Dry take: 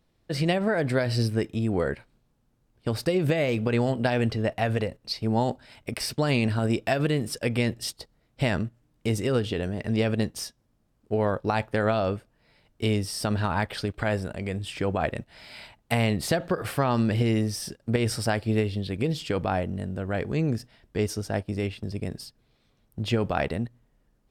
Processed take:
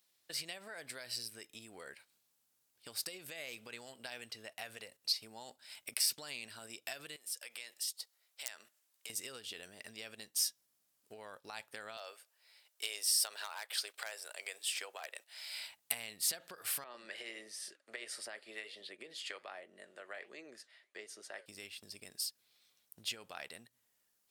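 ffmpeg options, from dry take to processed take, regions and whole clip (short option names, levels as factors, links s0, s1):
-filter_complex "[0:a]asettb=1/sr,asplit=3[s0][s1][s2];[s0]atrim=end=7.164[s3];[s1]atrim=start=7.16:end=9.1,asetpts=PTS-STARTPTS,afade=t=in:d=0.004:c=qsin,afade=t=out:st=1.936:d=0.004:c=qsin,highpass=550,aeval=exprs='(mod(4.73*val(0)+1,2)-1)/4.73':c=same,acompressor=threshold=0.00631:ratio=3:attack=3.2:release=140:knee=1:detection=peak[s4];[s2]atrim=start=9.096[s5];[s3][s4]acrossfade=d=0.004:c1=hsin:c2=qsin[s6];[s6][s5]acrossfade=d=0.004:c1=qsin:c2=hsin,asettb=1/sr,asplit=3[s7][s8][s9];[s7]atrim=end=11.974[s10];[s8]atrim=start=11.97:end=15.55,asetpts=PTS-STARTPTS,afade=t=in:d=0.004:c=qsin,afade=t=out:st=3.576:d=0.004:c=qsin,highpass=f=450:w=0.5412,highpass=f=450:w=1.3066,asoftclip=type=hard:threshold=0.119[s11];[s9]atrim=start=15.546[s12];[s10][s11]acrossfade=d=0.004:c1=hsin:c2=qsin[s13];[s13][s12]acrossfade=d=0.004:c1=qsin:c2=hsin,asettb=1/sr,asplit=3[s14][s15][s16];[s14]atrim=end=16.844[s17];[s15]atrim=start=16.84:end=21.46,asetpts=PTS-STARTPTS,afade=t=in:d=0.004:c=qsin,afade=t=out:st=4.616:d=0.004:c=qsin,highpass=300,equalizer=f=370:t=q:w=4:g=8,equalizer=f=590:t=q:w=4:g=9,equalizer=f=1200:t=q:w=4:g=5,equalizer=f=1900:t=q:w=4:g=9,equalizer=f=5500:t=q:w=4:g=-9,equalizer=f=8000:t=q:w=4:g=-7,lowpass=f=9000:w=0.5412,lowpass=f=9000:w=1.3066,flanger=delay=3:depth=7.5:regen=-76:speed=1.4:shape=sinusoidal,acrossover=split=490[s18][s19];[s18]aeval=exprs='val(0)*(1-0.5/2+0.5/2*cos(2*PI*1.4*n/s))':c=same[s20];[s19]aeval=exprs='val(0)*(1-0.5/2-0.5/2*cos(2*PI*1.4*n/s))':c=same[s21];[s20][s21]amix=inputs=2:normalize=0[s22];[s16]atrim=start=21.456[s23];[s17][s22]acrossfade=d=0.004:c1=hsin:c2=qsin[s24];[s24][s23]acrossfade=d=0.004:c1=qsin:c2=hsin,acompressor=threshold=0.0224:ratio=5,aderivative,volume=2.24"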